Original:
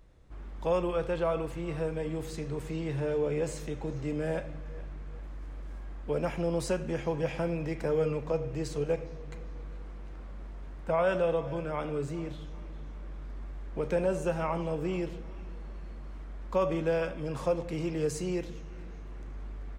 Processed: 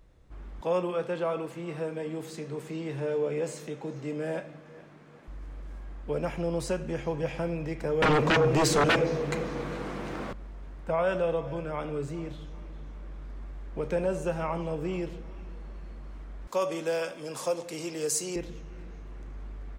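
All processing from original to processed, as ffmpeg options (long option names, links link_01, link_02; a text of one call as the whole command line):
ffmpeg -i in.wav -filter_complex "[0:a]asettb=1/sr,asplit=3[link_01][link_02][link_03];[link_01]atrim=end=0.614[link_04];[link_02]atrim=start=0.61:end=5.28,asetpts=PTS-STARTPTS,afade=type=in:duration=0.004:curve=qsin,afade=type=out:start_time=4.666:duration=0.004:curve=qsin,highpass=frequency=150:width=0.5412,highpass=frequency=150:width=1.3066,asplit=2[link_05][link_06];[link_06]adelay=22,volume=-13.5dB[link_07];[link_05][link_07]amix=inputs=2:normalize=0,atrim=end_sample=205947[link_08];[link_03]atrim=start=5.276[link_09];[link_04][link_08]acrossfade=duration=0.004:curve1=hsin:curve2=qsin[link_10];[link_10][link_09]acrossfade=duration=0.004:curve1=qsin:curve2=hsin,asettb=1/sr,asplit=3[link_11][link_12][link_13];[link_11]atrim=end=8.024[link_14];[link_12]atrim=start=8.02:end=10.33,asetpts=PTS-STARTPTS,afade=type=in:duration=0.004:curve=qsin,afade=type=out:start_time=2.306:duration=0.004:curve=qsin,highpass=160,aeval=exprs='0.119*sin(PI/2*5.01*val(0)/0.119)':channel_layout=same[link_15];[link_13]atrim=start=10.326[link_16];[link_14][link_15]acrossfade=duration=0.004:curve1=hsin:curve2=qsin[link_17];[link_17][link_16]acrossfade=duration=0.004:curve1=qsin:curve2=hsin,asettb=1/sr,asplit=3[link_18][link_19][link_20];[link_18]atrim=end=16.474[link_21];[link_19]atrim=start=16.47:end=18.36,asetpts=PTS-STARTPTS,afade=type=in:duration=0.004:curve=qsin,afade=type=out:start_time=1.886:duration=0.004:curve=qsin,highpass=frequency=100:width=0.5412,highpass=frequency=100:width=1.3066,bass=frequency=250:gain=-11,treble=frequency=4000:gain=14[link_22];[link_20]atrim=start=18.356[link_23];[link_21][link_22]acrossfade=duration=0.004:curve1=hsin:curve2=qsin[link_24];[link_24][link_23]acrossfade=duration=0.004:curve1=qsin:curve2=hsin" out.wav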